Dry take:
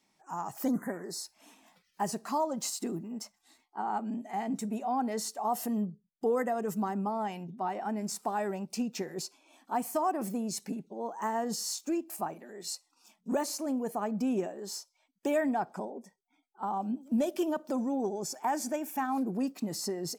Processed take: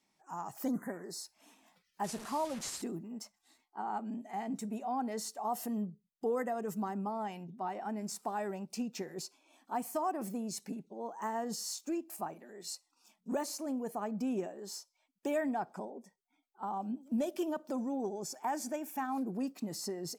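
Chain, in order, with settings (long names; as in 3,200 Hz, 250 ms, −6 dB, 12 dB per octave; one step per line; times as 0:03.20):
0:02.04–0:02.82: linear delta modulator 64 kbit/s, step −36 dBFS
level −4.5 dB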